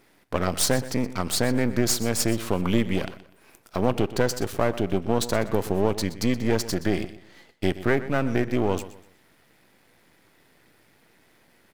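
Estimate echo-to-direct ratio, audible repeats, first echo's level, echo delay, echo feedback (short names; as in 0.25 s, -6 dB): -15.0 dB, 2, -15.5 dB, 0.123 s, 31%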